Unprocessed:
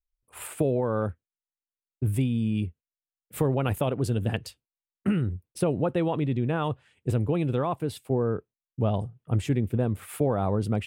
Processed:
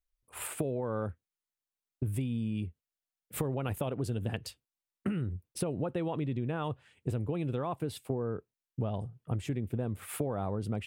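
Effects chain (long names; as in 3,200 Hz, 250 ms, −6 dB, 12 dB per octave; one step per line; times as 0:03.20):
downward compressor, threshold −30 dBFS, peak gain reduction 10.5 dB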